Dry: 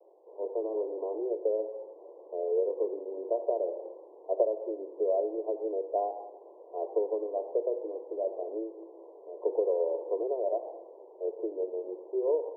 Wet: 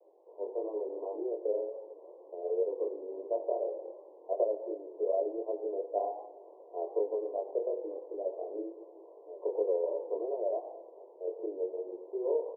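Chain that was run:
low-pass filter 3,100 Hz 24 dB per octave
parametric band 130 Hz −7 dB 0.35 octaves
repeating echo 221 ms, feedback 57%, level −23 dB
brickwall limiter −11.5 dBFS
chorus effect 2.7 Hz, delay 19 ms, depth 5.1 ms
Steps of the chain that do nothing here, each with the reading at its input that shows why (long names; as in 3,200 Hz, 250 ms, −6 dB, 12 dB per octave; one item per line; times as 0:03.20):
low-pass filter 3,100 Hz: nothing at its input above 1,000 Hz
parametric band 130 Hz: nothing at its input below 290 Hz
brickwall limiter −11.5 dBFS: peak of its input −14.0 dBFS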